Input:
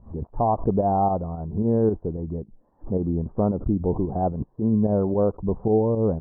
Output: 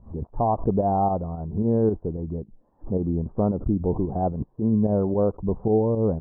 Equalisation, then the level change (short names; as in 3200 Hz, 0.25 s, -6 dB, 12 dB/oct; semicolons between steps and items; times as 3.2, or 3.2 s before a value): air absorption 270 m; 0.0 dB